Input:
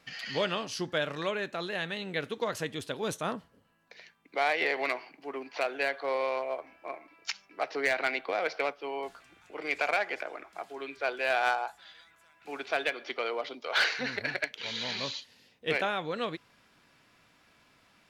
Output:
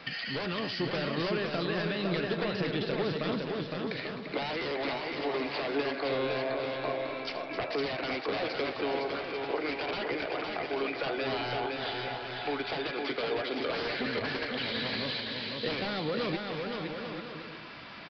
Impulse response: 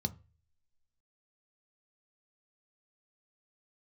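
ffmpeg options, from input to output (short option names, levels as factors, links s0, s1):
-filter_complex "[0:a]aeval=exprs='0.141*sin(PI/2*3.98*val(0)/0.141)':c=same,acompressor=threshold=0.0398:ratio=6,asplit=2[s0][s1];[s1]aecho=0:1:258:0.188[s2];[s0][s2]amix=inputs=2:normalize=0,acrossover=split=450[s3][s4];[s4]acompressor=threshold=0.0141:ratio=2.5[s5];[s3][s5]amix=inputs=2:normalize=0,lowshelf=f=70:g=-10.5,asplit=2[s6][s7];[s7]aecho=0:1:510|841.5|1057|1197|1288:0.631|0.398|0.251|0.158|0.1[s8];[s6][s8]amix=inputs=2:normalize=0,aresample=11025,aresample=44100"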